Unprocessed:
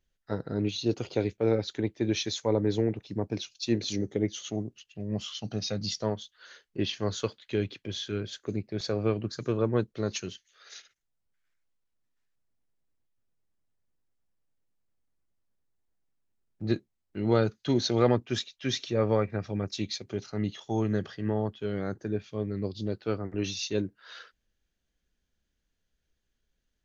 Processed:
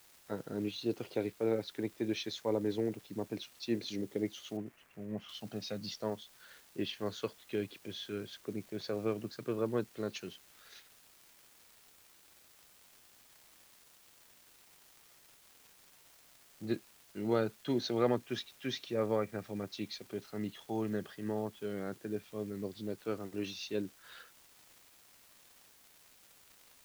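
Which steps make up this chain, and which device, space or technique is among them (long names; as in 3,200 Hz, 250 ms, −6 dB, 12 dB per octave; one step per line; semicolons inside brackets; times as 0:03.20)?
78 rpm shellac record (band-pass filter 160–4,300 Hz; surface crackle 320 per second −43 dBFS; white noise bed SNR 24 dB)
0:04.57–0:05.29: high shelf with overshoot 2,800 Hz −9.5 dB, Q 1.5
level −6 dB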